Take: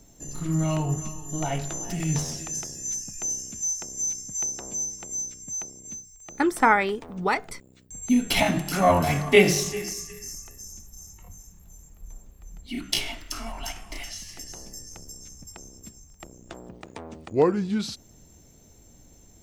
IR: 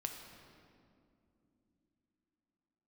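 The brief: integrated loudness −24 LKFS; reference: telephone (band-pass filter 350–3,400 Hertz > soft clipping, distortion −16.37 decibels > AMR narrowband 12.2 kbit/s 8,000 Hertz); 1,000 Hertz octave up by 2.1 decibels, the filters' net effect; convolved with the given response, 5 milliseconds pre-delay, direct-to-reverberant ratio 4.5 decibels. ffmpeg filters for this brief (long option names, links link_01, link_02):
-filter_complex "[0:a]equalizer=frequency=1000:width_type=o:gain=3,asplit=2[link_01][link_02];[1:a]atrim=start_sample=2205,adelay=5[link_03];[link_02][link_03]afir=irnorm=-1:irlink=0,volume=-3.5dB[link_04];[link_01][link_04]amix=inputs=2:normalize=0,highpass=350,lowpass=3400,asoftclip=threshold=-8.5dB,volume=2.5dB" -ar 8000 -c:a libopencore_amrnb -b:a 12200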